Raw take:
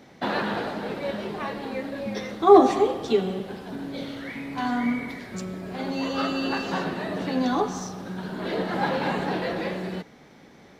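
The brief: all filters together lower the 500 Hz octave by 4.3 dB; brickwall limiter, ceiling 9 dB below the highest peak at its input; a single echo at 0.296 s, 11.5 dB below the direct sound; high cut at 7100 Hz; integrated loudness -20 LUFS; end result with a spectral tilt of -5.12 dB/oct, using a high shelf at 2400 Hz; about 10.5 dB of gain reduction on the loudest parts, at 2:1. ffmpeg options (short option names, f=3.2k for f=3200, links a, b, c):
-af "lowpass=7.1k,equalizer=f=500:t=o:g=-5.5,highshelf=f=2.4k:g=-8,acompressor=threshold=-31dB:ratio=2,alimiter=level_in=1.5dB:limit=-24dB:level=0:latency=1,volume=-1.5dB,aecho=1:1:296:0.266,volume=15dB"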